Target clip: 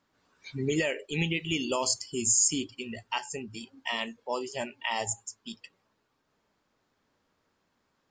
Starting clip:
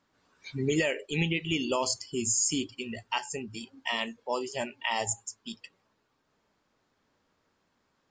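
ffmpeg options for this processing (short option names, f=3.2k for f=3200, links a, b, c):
-filter_complex "[0:a]asettb=1/sr,asplit=3[a][b][c];[a]atrim=end=1.204[d];[b]atrim=start=1.2:end=2.48,asetpts=PTS-STARTPTS,afade=t=in:d=0.004:c=qsin,afade=t=out:st=1.276:d=0.004:c=qsin,highshelf=f=7.9k:g=11[e];[c]atrim=start=2.476[f];[d][e]acrossfade=d=0.004:c1=hsin:c2=qsin[g];[g][f]acrossfade=d=0.004:c1=qsin:c2=hsin,volume=-1dB"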